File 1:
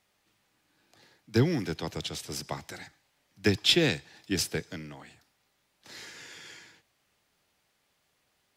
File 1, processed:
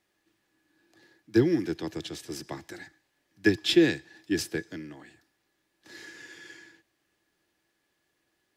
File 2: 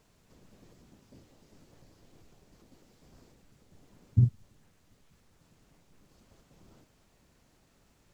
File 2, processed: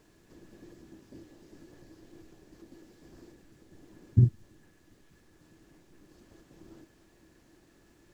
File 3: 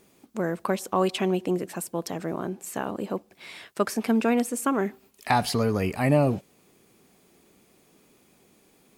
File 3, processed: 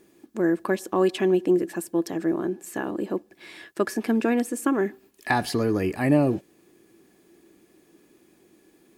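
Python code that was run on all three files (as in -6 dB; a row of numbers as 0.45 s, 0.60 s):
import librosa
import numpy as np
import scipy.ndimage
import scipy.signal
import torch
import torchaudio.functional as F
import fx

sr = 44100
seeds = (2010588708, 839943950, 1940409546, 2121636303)

y = fx.small_body(x, sr, hz=(330.0, 1700.0), ring_ms=50, db=14)
y = librosa.util.normalize(y) * 10.0 ** (-9 / 20.0)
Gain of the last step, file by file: -4.5 dB, +1.5 dB, -2.5 dB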